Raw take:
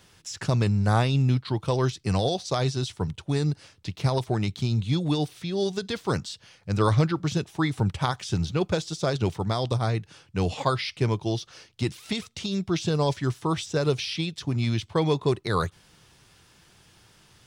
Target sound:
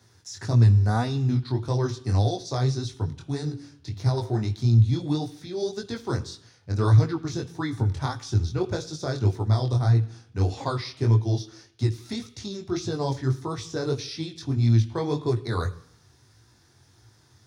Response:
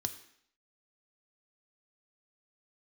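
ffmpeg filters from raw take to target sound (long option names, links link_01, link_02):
-filter_complex "[0:a]flanger=delay=17:depth=6.5:speed=1.7,asettb=1/sr,asplit=3[link_01][link_02][link_03];[link_01]atrim=end=3.224[link_04];[link_02]atrim=start=3.22:end=4.42,asetpts=PTS-STARTPTS,afade=type=in:duration=0.004:curve=qsin,afade=type=out:start_time=1.196:duration=0.004:curve=qsin,bandreject=frequency=47.48:width_type=h:width=4,bandreject=frequency=94.96:width_type=h:width=4,bandreject=frequency=142.44:width_type=h:width=4,bandreject=frequency=189.92:width_type=h:width=4,bandreject=frequency=237.4:width_type=h:width=4,bandreject=frequency=284.88:width_type=h:width=4,bandreject=frequency=332.36:width_type=h:width=4,bandreject=frequency=379.84:width_type=h:width=4,bandreject=frequency=427.32:width_type=h:width=4,bandreject=frequency=474.8:width_type=h:width=4,bandreject=frequency=522.28:width_type=h:width=4,bandreject=frequency=569.76:width_type=h:width=4,bandreject=frequency=617.24:width_type=h:width=4,bandreject=frequency=664.72:width_type=h:width=4,bandreject=frequency=712.2:width_type=h:width=4,bandreject=frequency=759.68:width_type=h:width=4,bandreject=frequency=807.16:width_type=h:width=4,bandreject=frequency=854.64:width_type=h:width=4,bandreject=frequency=902.12:width_type=h:width=4,bandreject=frequency=949.6:width_type=h:width=4,bandreject=frequency=997.08:width_type=h:width=4,bandreject=frequency=1044.56:width_type=h:width=4,bandreject=frequency=1092.04:width_type=h:width=4,bandreject=frequency=1139.52:width_type=h:width=4,bandreject=frequency=1187:width_type=h:width=4,bandreject=frequency=1234.48:width_type=h:width=4,bandreject=frequency=1281.96:width_type=h:width=4,bandreject=frequency=1329.44:width_type=h:width=4,bandreject=frequency=1376.92:width_type=h:width=4,bandreject=frequency=1424.4:width_type=h:width=4,bandreject=frequency=1471.88:width_type=h:width=4,bandreject=frequency=1519.36:width_type=h:width=4,bandreject=frequency=1566.84:width_type=h:width=4,bandreject=frequency=1614.32:width_type=h:width=4,bandreject=frequency=1661.8:width_type=h:width=4,bandreject=frequency=1709.28:width_type=h:width=4[link_05];[link_03]atrim=start=4.416[link_06];[link_04][link_05]acrossfade=duration=0.004:curve1=hsin:curve2=qsin[link_07];[link_07][link_06]acrossfade=duration=0.004:curve1=qsin:curve2=hsin,asplit=2[link_08][link_09];[1:a]atrim=start_sample=2205,lowshelf=frequency=290:gain=8.5[link_10];[link_09][link_10]afir=irnorm=-1:irlink=0,volume=0dB[link_11];[link_08][link_11]amix=inputs=2:normalize=0,volume=-7.5dB"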